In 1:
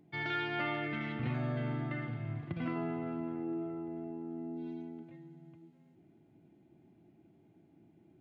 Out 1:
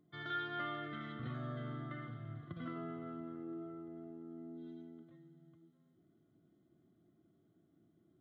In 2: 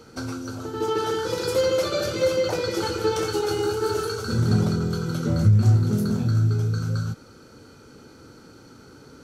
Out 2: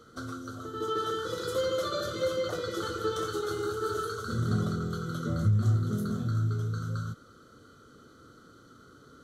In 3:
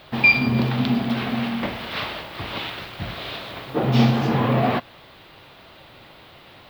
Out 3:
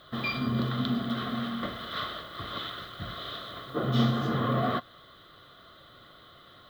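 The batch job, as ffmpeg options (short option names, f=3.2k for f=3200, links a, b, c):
-af "superequalizer=9b=0.355:10b=2.24:12b=0.282:13b=1.58:14b=0.631,volume=-8dB"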